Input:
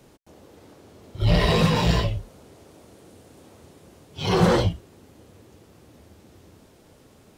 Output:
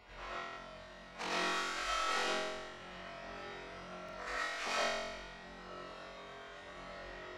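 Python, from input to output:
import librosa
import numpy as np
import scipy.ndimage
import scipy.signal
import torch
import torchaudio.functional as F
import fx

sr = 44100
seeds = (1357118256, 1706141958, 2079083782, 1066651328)

y = x + 0.5 * 10.0 ** (-12.0 / 20.0) * np.diff(np.sign(x), prepend=np.sign(x[:1]))
y = fx.highpass(y, sr, hz=79.0, slope=6)
y = fx.spec_gate(y, sr, threshold_db=-25, keep='weak')
y = fx.bass_treble(y, sr, bass_db=-8, treble_db=6)
y = fx.over_compress(y, sr, threshold_db=-30.0, ratio=-0.5)
y = fx.spacing_loss(y, sr, db_at_10k=41)
y = fx.room_flutter(y, sr, wall_m=3.8, rt60_s=1.2)
y = fx.rev_freeverb(y, sr, rt60_s=0.43, hf_ratio=0.4, predelay_ms=70, drr_db=-5.5)
y = fx.buffer_glitch(y, sr, at_s=(0.48, 4.04), block=2048, repeats=1)
y = y * 10.0 ** (3.0 / 20.0)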